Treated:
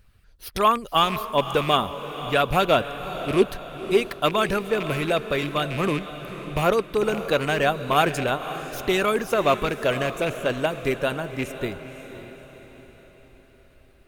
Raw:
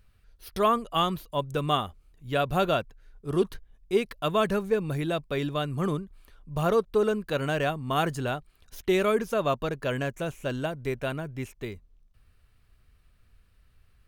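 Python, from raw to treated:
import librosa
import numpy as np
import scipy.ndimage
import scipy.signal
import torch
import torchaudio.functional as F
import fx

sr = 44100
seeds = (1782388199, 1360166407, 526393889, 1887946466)

y = fx.rattle_buzz(x, sr, strikes_db=-32.0, level_db=-27.0)
y = fx.hpss(y, sr, part='percussive', gain_db=8)
y = fx.echo_diffused(y, sr, ms=534, feedback_pct=48, wet_db=-11.5)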